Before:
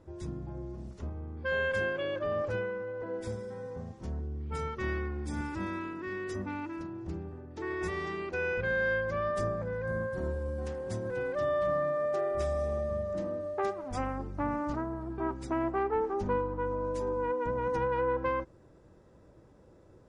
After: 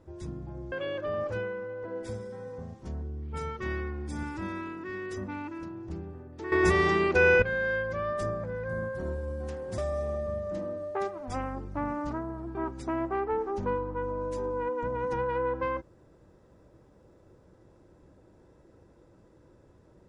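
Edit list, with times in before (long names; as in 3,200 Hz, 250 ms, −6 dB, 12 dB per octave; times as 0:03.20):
0:00.72–0:01.90: remove
0:07.70–0:08.60: clip gain +11.5 dB
0:10.96–0:12.41: remove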